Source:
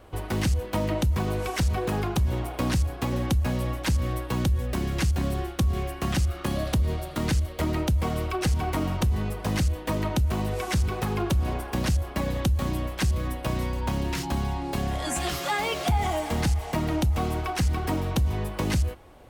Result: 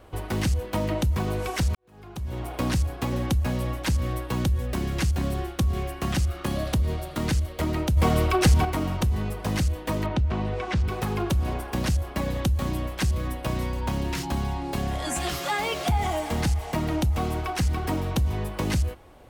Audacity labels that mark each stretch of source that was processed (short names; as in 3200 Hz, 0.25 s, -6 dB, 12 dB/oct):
1.750000	2.530000	fade in quadratic
7.970000	8.650000	gain +6.5 dB
10.060000	10.880000	LPF 3500 Hz